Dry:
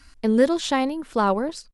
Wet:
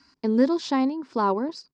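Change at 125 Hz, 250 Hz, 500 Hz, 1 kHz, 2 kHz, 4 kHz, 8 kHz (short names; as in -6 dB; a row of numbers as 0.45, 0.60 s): n/a, -0.5 dB, -4.0 dB, -2.0 dB, -7.0 dB, -5.5 dB, -9.5 dB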